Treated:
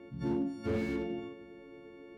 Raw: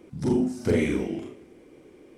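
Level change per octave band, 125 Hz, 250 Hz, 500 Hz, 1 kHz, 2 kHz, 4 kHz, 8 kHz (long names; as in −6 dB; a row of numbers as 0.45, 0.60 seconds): −9.5 dB, −8.5 dB, −9.5 dB, −4.5 dB, −9.0 dB, −9.5 dB, below −15 dB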